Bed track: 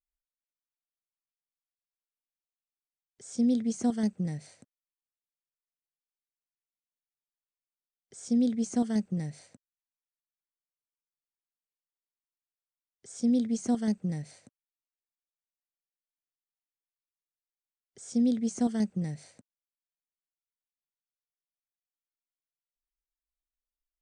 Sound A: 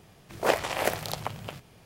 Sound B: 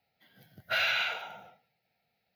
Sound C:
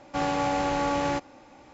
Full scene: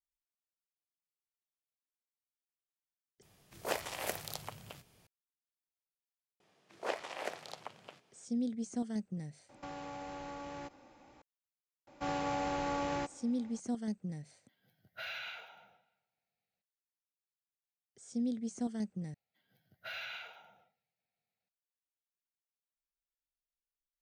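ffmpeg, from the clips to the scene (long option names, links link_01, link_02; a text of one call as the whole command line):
ffmpeg -i bed.wav -i cue0.wav -i cue1.wav -i cue2.wav -filter_complex "[1:a]asplit=2[link_01][link_02];[3:a]asplit=2[link_03][link_04];[2:a]asplit=2[link_05][link_06];[0:a]volume=-9dB[link_07];[link_01]highshelf=frequency=3900:gain=8.5[link_08];[link_02]highpass=280,lowpass=7200[link_09];[link_03]acompressor=threshold=-32dB:ratio=6:attack=3.2:release=140:knee=1:detection=peak[link_10];[link_05]asplit=2[link_11][link_12];[link_12]adelay=297,lowpass=frequency=4600:poles=1,volume=-23dB,asplit=2[link_13][link_14];[link_14]adelay=297,lowpass=frequency=4600:poles=1,volume=0.16[link_15];[link_11][link_13][link_15]amix=inputs=3:normalize=0[link_16];[link_07]asplit=3[link_17][link_18][link_19];[link_17]atrim=end=3.224[link_20];[link_08]atrim=end=1.85,asetpts=PTS-STARTPTS,volume=-12.5dB[link_21];[link_18]atrim=start=5.066:end=19.144[link_22];[link_06]atrim=end=2.35,asetpts=PTS-STARTPTS,volume=-15dB[link_23];[link_19]atrim=start=21.486[link_24];[link_09]atrim=end=1.85,asetpts=PTS-STARTPTS,volume=-12.5dB,afade=type=in:duration=0.004:curve=hsin,afade=type=out:start_time=1.846:duration=0.004:curve=hsin,adelay=6400[link_25];[link_10]atrim=end=1.73,asetpts=PTS-STARTPTS,volume=-9dB,afade=type=in:duration=0.004:curve=hsin,afade=type=out:start_time=1.726:duration=0.004:curve=hsin,adelay=9490[link_26];[link_04]atrim=end=1.73,asetpts=PTS-STARTPTS,volume=-9dB,afade=type=in:duration=0.004:curve=hsin,afade=type=out:start_time=1.726:duration=0.004:curve=hsin,adelay=11870[link_27];[link_16]atrim=end=2.35,asetpts=PTS-STARTPTS,volume=-14.5dB,afade=type=in:duration=0.004:curve=hsin,afade=type=out:start_time=2.346:duration=0.004:curve=hsin,adelay=14270[link_28];[link_20][link_21]acrossfade=duration=0.004:curve1=hsin:curve2=hsin[link_29];[link_29][link_22]acrossfade=duration=0.004:curve1=hsin:curve2=hsin[link_30];[link_30][link_23]acrossfade=duration=0.004:curve1=hsin:curve2=hsin[link_31];[link_31][link_24]acrossfade=duration=0.004:curve1=hsin:curve2=hsin[link_32];[link_32][link_25][link_26][link_27][link_28]amix=inputs=5:normalize=0" out.wav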